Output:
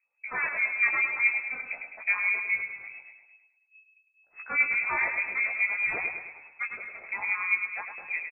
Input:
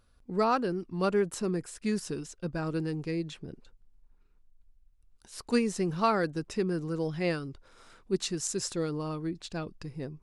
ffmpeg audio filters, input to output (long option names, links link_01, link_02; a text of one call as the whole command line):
ffmpeg -i in.wav -filter_complex "[0:a]agate=range=-16dB:threshold=-54dB:ratio=16:detection=peak,aeval=exprs='0.224*sin(PI/2*3.55*val(0)/0.224)':channel_layout=same,flanger=delay=4.6:depth=9.1:regen=37:speed=1.9:shape=triangular,asplit=2[link_01][link_02];[link_02]adelay=300,highpass=300,lowpass=3400,asoftclip=type=hard:threshold=-22dB,volume=-12dB[link_03];[link_01][link_03]amix=inputs=2:normalize=0,acrossover=split=910[link_04][link_05];[link_04]aeval=exprs='val(0)*(1-1/2+1/2*cos(2*PI*3.9*n/s))':channel_layout=same[link_06];[link_05]aeval=exprs='val(0)*(1-1/2-1/2*cos(2*PI*3.9*n/s))':channel_layout=same[link_07];[link_06][link_07]amix=inputs=2:normalize=0,flanger=delay=18:depth=4.6:speed=0.43,asplit=2[link_08][link_09];[link_09]aecho=0:1:129|258|387|516|645|774:0.447|0.214|0.103|0.0494|0.0237|0.0114[link_10];[link_08][link_10]amix=inputs=2:normalize=0,asetrate=54243,aresample=44100,lowpass=frequency=2200:width_type=q:width=0.5098,lowpass=frequency=2200:width_type=q:width=0.6013,lowpass=frequency=2200:width_type=q:width=0.9,lowpass=frequency=2200:width_type=q:width=2.563,afreqshift=-2600" out.wav